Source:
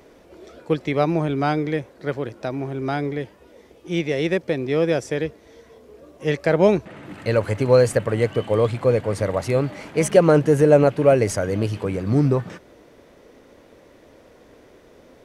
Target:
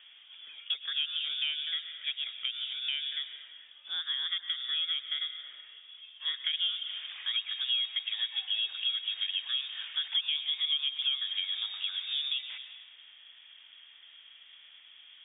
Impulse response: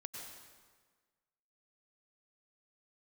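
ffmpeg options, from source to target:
-filter_complex "[0:a]highpass=55,acrossover=split=450 2400:gain=0.141 1 0.141[s0][s1][s2];[s0][s1][s2]amix=inputs=3:normalize=0,lowpass=f=3200:t=q:w=0.5098,lowpass=f=3200:t=q:w=0.6013,lowpass=f=3200:t=q:w=0.9,lowpass=f=3200:t=q:w=2.563,afreqshift=-3800,asplit=2[s3][s4];[1:a]atrim=start_sample=2205[s5];[s4][s5]afir=irnorm=-1:irlink=0,volume=0.75[s6];[s3][s6]amix=inputs=2:normalize=0,acrossover=split=1200|2600[s7][s8][s9];[s7]acompressor=threshold=0.00112:ratio=4[s10];[s8]acompressor=threshold=0.00708:ratio=4[s11];[s9]acompressor=threshold=0.0355:ratio=4[s12];[s10][s11][s12]amix=inputs=3:normalize=0,volume=0.708"

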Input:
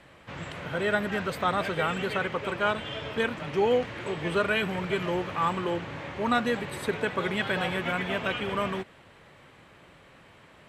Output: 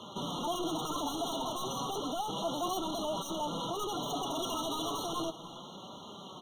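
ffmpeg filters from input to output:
-filter_complex "[0:a]highpass=52,highshelf=f=5000:g=-10,asplit=2[s0][s1];[s1]acompressor=threshold=0.00794:ratio=6,volume=0.75[s2];[s0][s2]amix=inputs=2:normalize=0,asoftclip=type=tanh:threshold=0.0376,atempo=0.96,asoftclip=type=hard:threshold=0.015,flanger=delay=8.4:depth=5.1:regen=44:speed=0.19:shape=triangular,asetrate=76440,aresample=44100,aecho=1:1:293:0.112,afftfilt=real='re*eq(mod(floor(b*sr/1024/1400),2),0)':imag='im*eq(mod(floor(b*sr/1024/1400),2),0)':win_size=1024:overlap=0.75,volume=2.51"

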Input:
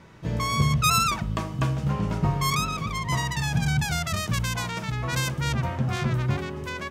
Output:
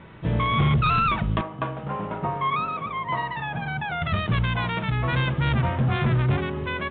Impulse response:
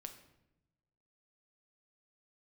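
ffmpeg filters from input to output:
-filter_complex "[0:a]asettb=1/sr,asplit=3[s0][s1][s2];[s0]atrim=end=1.414[s3];[s1]atrim=start=1.41:end=4.02,asetpts=PTS-STARTPTS,afade=t=in:d=0.004:c=qsin,afade=t=out:st=2.606:d=0.004:c=qsin,bandpass=f=830:t=q:w=0.76:csg=0[s4];[s2]atrim=start=4.016[s5];[s3][s4]acrossfade=d=0.004:c1=hsin:c2=qsin[s6];[s6][s5]acrossfade=d=0.004:c1=qsin:c2=hsin,asoftclip=type=hard:threshold=0.0891,volume=1.68" -ar 8000 -c:a pcm_alaw

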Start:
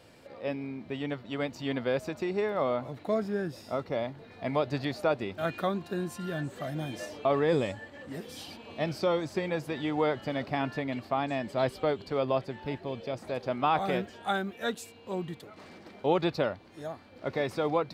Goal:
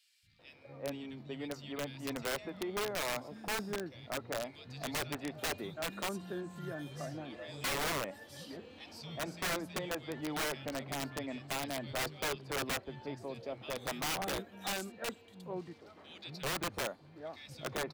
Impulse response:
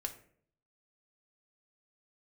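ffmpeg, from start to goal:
-filter_complex "[0:a]acrossover=split=170|2400[s0][s1][s2];[s0]adelay=230[s3];[s1]adelay=390[s4];[s3][s4][s2]amix=inputs=3:normalize=0,aeval=exprs='(mod(15*val(0)+1,2)-1)/15':c=same,volume=0.501"

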